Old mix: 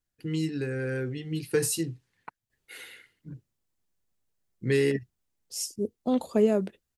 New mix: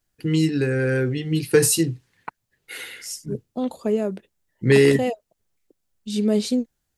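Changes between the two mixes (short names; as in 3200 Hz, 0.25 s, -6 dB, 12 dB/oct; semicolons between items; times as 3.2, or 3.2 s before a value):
first voice +9.5 dB; second voice: entry -2.50 s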